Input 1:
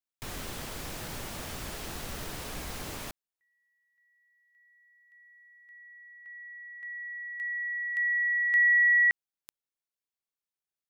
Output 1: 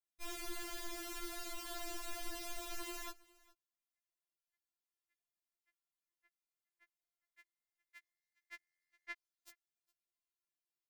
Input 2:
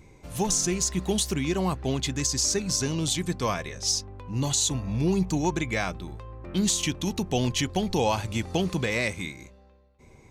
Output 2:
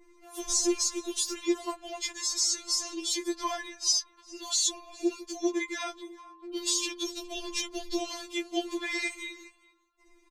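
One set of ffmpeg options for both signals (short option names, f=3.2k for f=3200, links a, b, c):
-filter_complex "[0:a]asplit=2[a][b];[b]aecho=0:1:411:0.0668[c];[a][c]amix=inputs=2:normalize=0,adynamicequalizer=threshold=0.00891:dfrequency=5000:dqfactor=1.1:tfrequency=5000:tqfactor=1.1:attack=5:release=100:ratio=0.375:range=3.5:mode=boostabove:tftype=bell,afftfilt=real='re*4*eq(mod(b,16),0)':imag='im*4*eq(mod(b,16),0)':win_size=2048:overlap=0.75,volume=-3.5dB"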